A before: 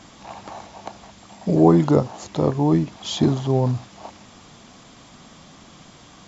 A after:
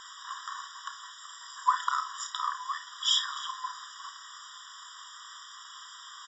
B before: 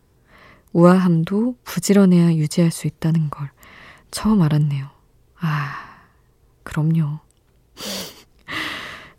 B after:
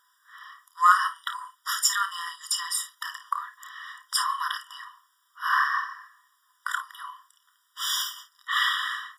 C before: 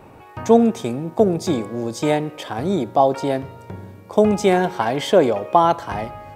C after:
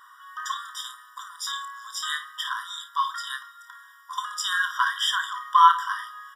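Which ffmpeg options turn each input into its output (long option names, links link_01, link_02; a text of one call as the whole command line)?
ffmpeg -i in.wav -filter_complex "[0:a]asplit=2[link_01][link_02];[link_02]aecho=0:1:30|54:0.335|0.251[link_03];[link_01][link_03]amix=inputs=2:normalize=0,afftfilt=real='re*eq(mod(floor(b*sr/1024/970),2),1)':imag='im*eq(mod(floor(b*sr/1024/970),2),1)':win_size=1024:overlap=0.75,volume=4.5dB" out.wav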